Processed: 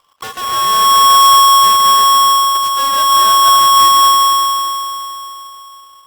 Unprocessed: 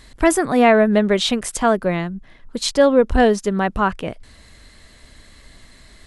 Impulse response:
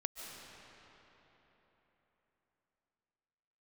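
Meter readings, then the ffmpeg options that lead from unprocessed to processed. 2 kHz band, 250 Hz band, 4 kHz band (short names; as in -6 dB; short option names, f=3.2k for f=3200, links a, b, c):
-2.5 dB, under -15 dB, +16.5 dB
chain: -filter_complex "[0:a]lowpass=3.9k,alimiter=limit=-9dB:level=0:latency=1,aeval=exprs='0.355*(cos(1*acos(clip(val(0)/0.355,-1,1)))-cos(1*PI/2))+0.141*(cos(8*acos(clip(val(0)/0.355,-1,1)))-cos(8*PI/2))':c=same[a];[1:a]atrim=start_sample=2205,asetrate=57330,aresample=44100[b];[a][b]afir=irnorm=-1:irlink=0,aeval=exprs='val(0)*sgn(sin(2*PI*1100*n/s))':c=same,volume=-8dB"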